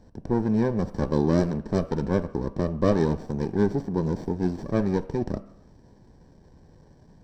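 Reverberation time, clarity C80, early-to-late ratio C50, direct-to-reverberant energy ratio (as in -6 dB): no single decay rate, 18.5 dB, 16.5 dB, 10.5 dB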